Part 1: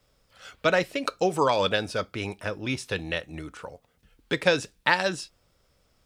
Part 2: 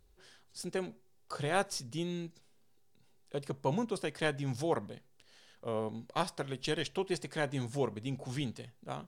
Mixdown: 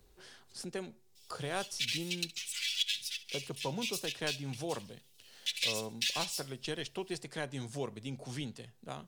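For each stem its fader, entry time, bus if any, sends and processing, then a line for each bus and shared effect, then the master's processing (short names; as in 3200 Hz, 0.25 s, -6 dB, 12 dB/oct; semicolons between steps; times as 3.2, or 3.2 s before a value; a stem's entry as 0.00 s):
+0.5 dB, 1.15 s, no send, echo send -17 dB, minimum comb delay 3.5 ms; steep high-pass 2700 Hz 36 dB/oct; comb 6.5 ms, depth 64%
-5.0 dB, 0.00 s, no send, no echo send, dry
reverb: off
echo: feedback echo 67 ms, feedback 34%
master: wow and flutter 23 cents; three-band squash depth 40%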